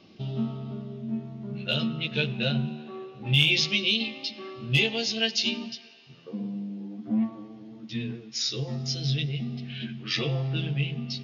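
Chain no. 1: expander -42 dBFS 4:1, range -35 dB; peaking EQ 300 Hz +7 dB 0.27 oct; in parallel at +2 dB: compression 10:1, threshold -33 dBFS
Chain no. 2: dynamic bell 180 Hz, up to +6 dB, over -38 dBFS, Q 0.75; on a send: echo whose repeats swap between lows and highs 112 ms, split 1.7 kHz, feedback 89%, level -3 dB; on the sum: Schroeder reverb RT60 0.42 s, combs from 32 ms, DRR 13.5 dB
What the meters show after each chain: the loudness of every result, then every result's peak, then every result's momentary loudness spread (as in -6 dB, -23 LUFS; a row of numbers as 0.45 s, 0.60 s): -25.0 LUFS, -22.5 LUFS; -6.0 dBFS, -6.0 dBFS; 11 LU, 8 LU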